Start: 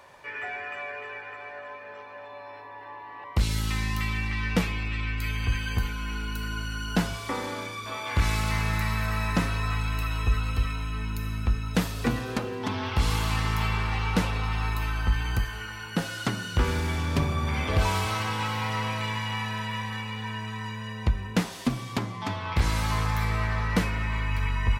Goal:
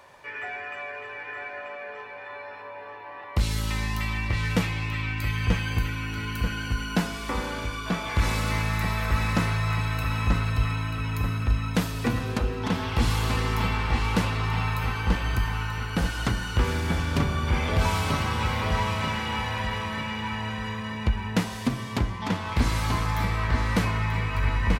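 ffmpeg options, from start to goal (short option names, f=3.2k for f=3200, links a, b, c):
-filter_complex "[0:a]asplit=2[a][b];[b]adelay=936,lowpass=f=3.6k:p=1,volume=-3.5dB,asplit=2[c][d];[d]adelay=936,lowpass=f=3.6k:p=1,volume=0.47,asplit=2[e][f];[f]adelay=936,lowpass=f=3.6k:p=1,volume=0.47,asplit=2[g][h];[h]adelay=936,lowpass=f=3.6k:p=1,volume=0.47,asplit=2[i][j];[j]adelay=936,lowpass=f=3.6k:p=1,volume=0.47,asplit=2[k][l];[l]adelay=936,lowpass=f=3.6k:p=1,volume=0.47[m];[a][c][e][g][i][k][m]amix=inputs=7:normalize=0"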